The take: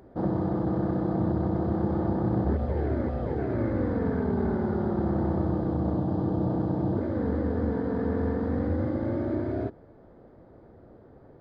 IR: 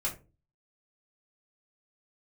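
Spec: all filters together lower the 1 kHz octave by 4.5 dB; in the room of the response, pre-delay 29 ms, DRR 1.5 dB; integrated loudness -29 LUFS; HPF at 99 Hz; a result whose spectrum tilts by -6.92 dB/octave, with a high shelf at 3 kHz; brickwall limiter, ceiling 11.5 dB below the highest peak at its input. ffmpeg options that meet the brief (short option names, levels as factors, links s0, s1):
-filter_complex "[0:a]highpass=99,equalizer=f=1000:t=o:g=-7.5,highshelf=f=3000:g=8.5,alimiter=level_in=1.5:limit=0.0631:level=0:latency=1,volume=0.668,asplit=2[s0][s1];[1:a]atrim=start_sample=2205,adelay=29[s2];[s1][s2]afir=irnorm=-1:irlink=0,volume=0.531[s3];[s0][s3]amix=inputs=2:normalize=0,volume=1.5"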